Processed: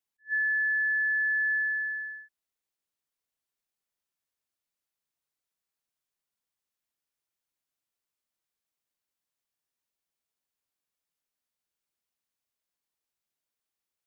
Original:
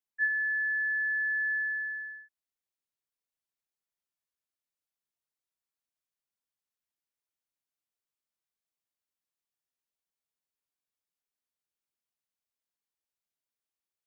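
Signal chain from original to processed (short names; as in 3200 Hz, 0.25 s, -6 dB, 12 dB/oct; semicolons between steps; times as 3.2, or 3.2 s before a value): attack slew limiter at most 390 dB/s; gain +3 dB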